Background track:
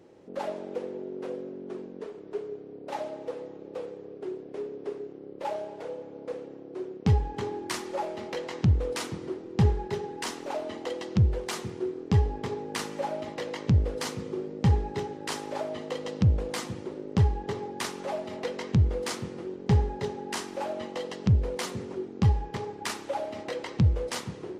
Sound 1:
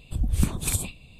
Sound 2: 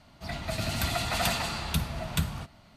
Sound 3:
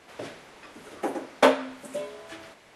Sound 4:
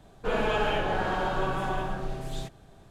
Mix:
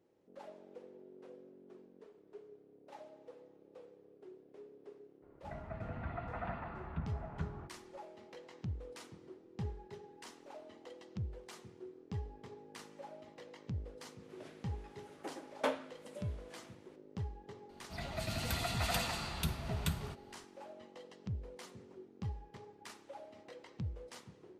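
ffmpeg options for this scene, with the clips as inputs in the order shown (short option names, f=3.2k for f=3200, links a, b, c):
-filter_complex "[2:a]asplit=2[a][b];[0:a]volume=-18.5dB[c];[a]lowpass=f=1.7k:w=0.5412,lowpass=f=1.7k:w=1.3066,atrim=end=2.76,asetpts=PTS-STARTPTS,volume=-11dB,afade=t=in:d=0.004:c=hsin,afade=t=out:st=2.756:d=0.004:c=hsin,adelay=5220[d];[3:a]atrim=end=2.75,asetpts=PTS-STARTPTS,volume=-16dB,afade=t=in:d=0.004:c=hsin,afade=t=out:st=2.746:d=0.004:c=hsin,adelay=14210[e];[b]atrim=end=2.76,asetpts=PTS-STARTPTS,volume=-7.5dB,afade=t=in:d=0.004:c=hsin,afade=t=out:st=2.756:d=0.004:c=hsin,adelay=17690[f];[c][d][e][f]amix=inputs=4:normalize=0"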